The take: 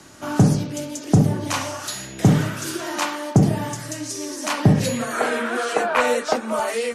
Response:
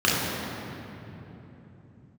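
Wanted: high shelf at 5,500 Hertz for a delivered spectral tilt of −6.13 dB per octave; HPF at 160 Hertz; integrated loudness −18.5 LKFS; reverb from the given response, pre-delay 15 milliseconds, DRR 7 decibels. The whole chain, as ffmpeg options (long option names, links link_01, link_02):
-filter_complex "[0:a]highpass=160,highshelf=frequency=5500:gain=-8,asplit=2[link_01][link_02];[1:a]atrim=start_sample=2205,adelay=15[link_03];[link_02][link_03]afir=irnorm=-1:irlink=0,volume=-26dB[link_04];[link_01][link_04]amix=inputs=2:normalize=0,volume=2.5dB"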